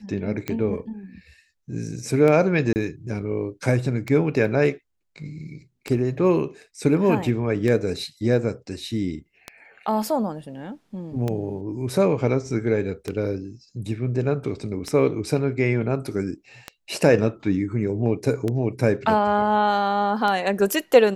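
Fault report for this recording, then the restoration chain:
scratch tick 33 1/3 rpm −13 dBFS
0:02.73–0:02.76: drop-out 29 ms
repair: click removal
repair the gap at 0:02.73, 29 ms

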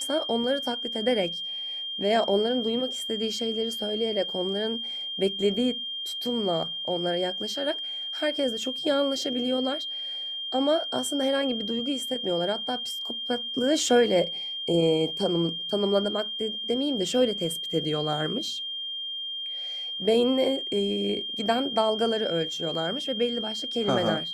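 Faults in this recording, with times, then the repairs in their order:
whistle 3,200 Hz −31 dBFS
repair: notch filter 3,200 Hz, Q 30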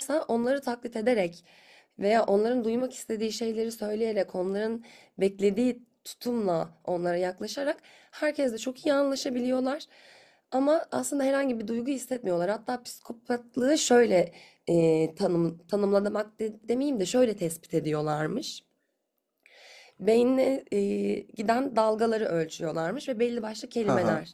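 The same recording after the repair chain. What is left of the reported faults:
none of them is left

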